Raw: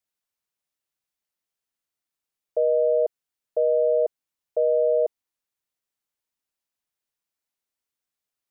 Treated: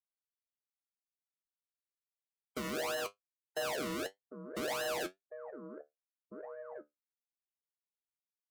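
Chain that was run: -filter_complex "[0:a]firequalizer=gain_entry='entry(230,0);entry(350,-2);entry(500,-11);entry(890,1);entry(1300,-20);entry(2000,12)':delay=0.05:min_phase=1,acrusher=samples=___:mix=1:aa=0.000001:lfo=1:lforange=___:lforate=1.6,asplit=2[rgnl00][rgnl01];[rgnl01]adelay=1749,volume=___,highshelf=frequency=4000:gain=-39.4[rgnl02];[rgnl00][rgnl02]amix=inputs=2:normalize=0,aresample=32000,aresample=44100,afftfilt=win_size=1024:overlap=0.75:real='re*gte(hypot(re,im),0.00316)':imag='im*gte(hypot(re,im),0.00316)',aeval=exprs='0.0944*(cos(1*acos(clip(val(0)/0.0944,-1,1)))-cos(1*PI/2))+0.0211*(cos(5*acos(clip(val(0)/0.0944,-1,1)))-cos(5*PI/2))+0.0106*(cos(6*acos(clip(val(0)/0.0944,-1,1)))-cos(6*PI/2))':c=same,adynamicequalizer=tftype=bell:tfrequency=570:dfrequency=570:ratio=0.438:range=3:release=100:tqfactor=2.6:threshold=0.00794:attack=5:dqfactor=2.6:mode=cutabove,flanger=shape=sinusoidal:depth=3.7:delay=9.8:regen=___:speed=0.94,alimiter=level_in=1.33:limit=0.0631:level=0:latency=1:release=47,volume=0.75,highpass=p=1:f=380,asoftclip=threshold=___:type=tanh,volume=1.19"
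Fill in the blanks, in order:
37, 37, 0.141, 57, 0.0355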